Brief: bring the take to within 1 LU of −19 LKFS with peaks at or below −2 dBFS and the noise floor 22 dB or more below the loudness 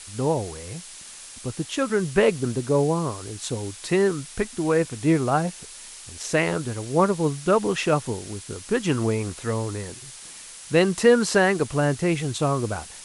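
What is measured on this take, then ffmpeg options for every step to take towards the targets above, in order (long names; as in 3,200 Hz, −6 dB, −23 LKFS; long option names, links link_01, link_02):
background noise floor −42 dBFS; target noise floor −46 dBFS; integrated loudness −23.5 LKFS; sample peak −4.5 dBFS; target loudness −19.0 LKFS
→ -af "afftdn=noise_reduction=6:noise_floor=-42"
-af "volume=4.5dB,alimiter=limit=-2dB:level=0:latency=1"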